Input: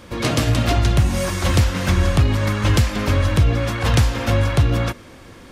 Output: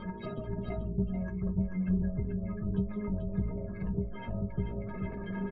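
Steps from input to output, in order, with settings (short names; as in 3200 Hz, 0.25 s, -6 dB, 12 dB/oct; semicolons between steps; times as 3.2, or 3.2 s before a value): spectral gate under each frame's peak -15 dB strong; low shelf 440 Hz +8 dB; in parallel at +2 dB: negative-ratio compressor -32 dBFS, ratio -0.5; on the sum: added harmonics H 3 -16 dB, 4 -24 dB, 8 -37 dB, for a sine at 2 dBFS; metallic resonator 190 Hz, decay 0.3 s, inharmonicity 0.03; on a send: echo 0.437 s -6 dB; on the sum: gain -1.5 dB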